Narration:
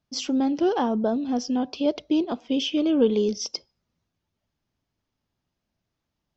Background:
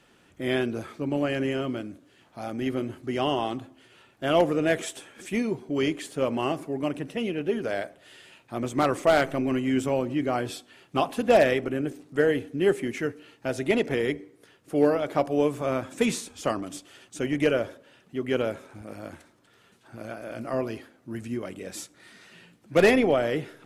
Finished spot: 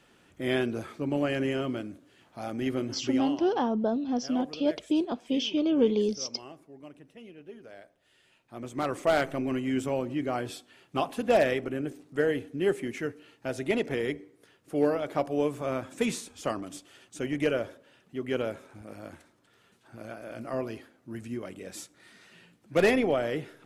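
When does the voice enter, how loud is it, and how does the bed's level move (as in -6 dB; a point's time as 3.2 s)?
2.80 s, -3.5 dB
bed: 3.08 s -1.5 dB
3.44 s -19 dB
7.81 s -19 dB
9.1 s -4 dB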